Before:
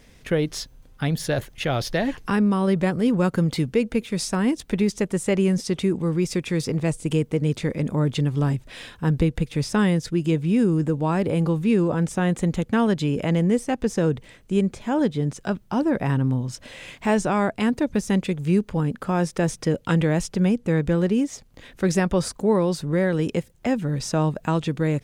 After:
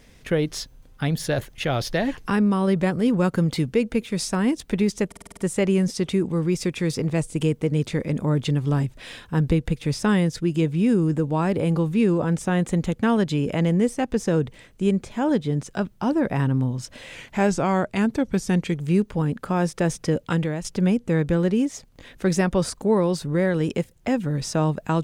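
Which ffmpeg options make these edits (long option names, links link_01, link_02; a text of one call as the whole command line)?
ffmpeg -i in.wav -filter_complex "[0:a]asplit=10[link_01][link_02][link_03][link_04][link_05][link_06][link_07][link_08][link_09][link_10];[link_01]atrim=end=5.122[link_11];[link_02]atrim=start=5.068:end=5.122[link_12];[link_03]atrim=start=5.068:end=5.122[link_13];[link_04]atrim=start=5.068:end=5.122[link_14];[link_05]atrim=start=5.068:end=5.122[link_15];[link_06]atrim=start=5.068:end=5.122[link_16];[link_07]atrim=start=5.068:end=16.854[link_17];[link_08]atrim=start=16.85:end=18.38,asetpts=PTS-STARTPTS,asetrate=41013,aresample=44100[link_18];[link_09]atrim=start=18.376:end=20.23,asetpts=PTS-STARTPTS,afade=type=out:start_time=1.424:duration=0.43:silence=0.298538[link_19];[link_10]atrim=start=20.23,asetpts=PTS-STARTPTS,afade=type=in:duration=0.004:curve=hsin:silence=0.298538[link_20];[link_11][link_12]acrossfade=duration=0.004:curve1=hsin:curve2=hsin[link_21];[link_21][link_13]acrossfade=duration=0.004:curve1=hsin:curve2=hsin[link_22];[link_22][link_14]acrossfade=duration=0.004:curve1=hsin:curve2=hsin[link_23];[link_23][link_15]acrossfade=duration=0.004:curve1=hsin:curve2=hsin[link_24];[link_24][link_16]acrossfade=duration=0.004:curve1=hsin:curve2=hsin[link_25];[link_25][link_17]acrossfade=duration=0.004:curve1=hsin:curve2=hsin[link_26];[link_26][link_18]acrossfade=duration=0.004:curve1=hsin:curve2=hsin[link_27];[link_19][link_20]concat=n=2:v=0:a=1[link_28];[link_27][link_28]acrossfade=duration=0.004:curve1=hsin:curve2=hsin" out.wav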